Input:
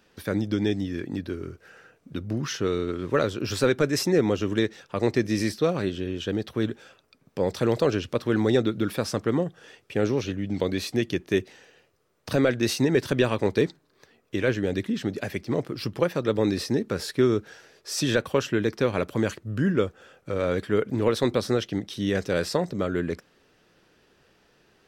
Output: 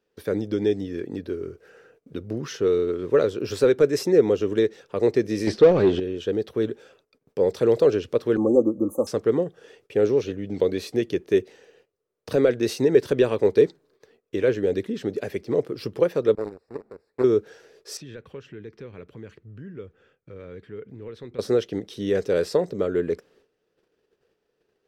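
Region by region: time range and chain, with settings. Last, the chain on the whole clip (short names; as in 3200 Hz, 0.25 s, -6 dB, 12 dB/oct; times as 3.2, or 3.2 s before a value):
5.47–6 Butterworth band-stop 1000 Hz, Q 6.7 + sample leveller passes 3 + air absorption 110 m
8.37–9.07 brick-wall FIR band-stop 1300–6100 Hz + comb 3.6 ms, depth 87% + three-band expander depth 40%
16.35–17.24 delta modulation 64 kbps, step -21 dBFS + power-law curve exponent 3 + running mean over 14 samples
17.97–21.39 EQ curve 140 Hz 0 dB, 580 Hz -14 dB, 2200 Hz -4 dB, 7100 Hz -16 dB, 11000 Hz -21 dB + compressor 2:1, threshold -42 dBFS
whole clip: gate -59 dBFS, range -14 dB; bell 440 Hz +12.5 dB 0.7 oct; gain -4.5 dB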